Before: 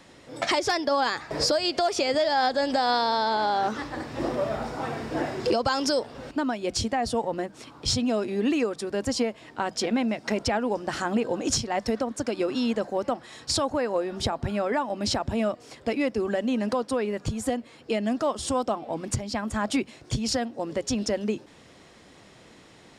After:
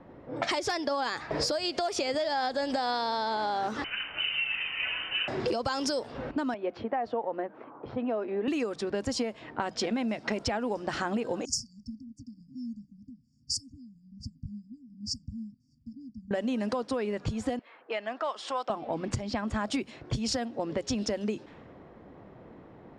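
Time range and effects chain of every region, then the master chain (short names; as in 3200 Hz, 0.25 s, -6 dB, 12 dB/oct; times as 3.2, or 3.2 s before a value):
3.84–5.28 HPF 240 Hz 24 dB/oct + inverted band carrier 3300 Hz
6.54–8.48 BPF 520–2200 Hz + tilt -3 dB/oct
11.45–16.31 brick-wall FIR band-stop 280–4500 Hz + resonant low shelf 440 Hz -12 dB, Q 1.5
17.59–18.7 low-pass opened by the level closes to 1900 Hz, open at -24.5 dBFS + HPF 810 Hz
whole clip: low-pass opened by the level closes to 870 Hz, open at -22 dBFS; compressor 4:1, threshold -32 dBFS; gain +3.5 dB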